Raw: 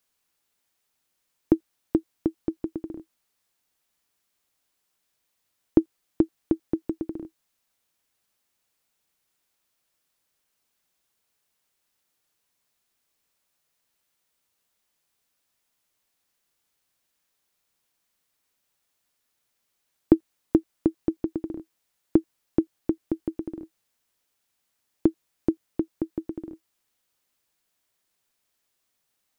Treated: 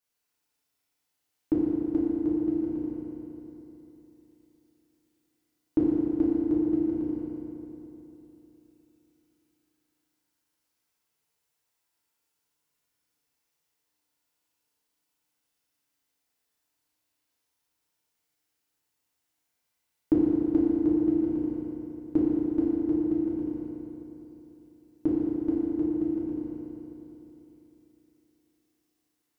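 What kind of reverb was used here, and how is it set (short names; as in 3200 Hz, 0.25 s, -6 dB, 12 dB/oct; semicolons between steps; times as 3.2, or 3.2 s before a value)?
FDN reverb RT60 3.4 s, high-frequency decay 0.75×, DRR -8.5 dB; gain -12 dB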